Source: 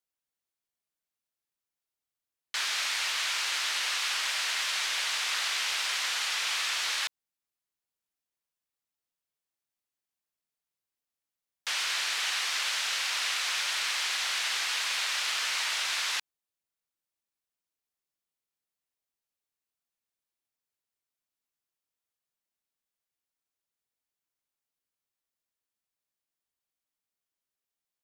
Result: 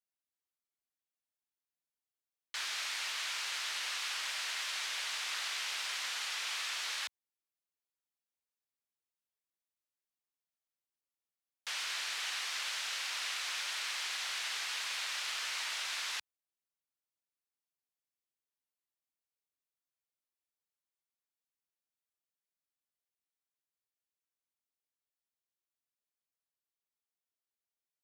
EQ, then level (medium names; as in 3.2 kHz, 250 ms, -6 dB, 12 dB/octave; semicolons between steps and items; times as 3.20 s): high-pass 63 Hz; peaking EQ 140 Hz -6 dB 0.77 oct; -7.5 dB